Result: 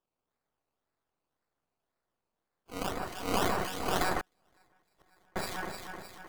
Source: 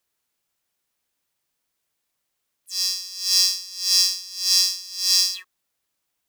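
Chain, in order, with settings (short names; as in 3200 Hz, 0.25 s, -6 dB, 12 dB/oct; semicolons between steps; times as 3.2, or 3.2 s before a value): half-wave gain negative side -12 dB; decimation with a swept rate 20×, swing 60% 1.9 Hz; low shelf 390 Hz -3.5 dB; echo with dull and thin repeats by turns 0.154 s, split 2200 Hz, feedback 71%, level -2.5 dB; 4.2–5.36 flipped gate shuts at -17 dBFS, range -38 dB; gain -7.5 dB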